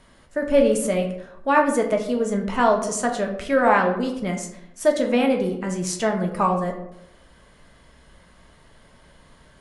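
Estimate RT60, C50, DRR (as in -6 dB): 0.80 s, 8.0 dB, 1.5 dB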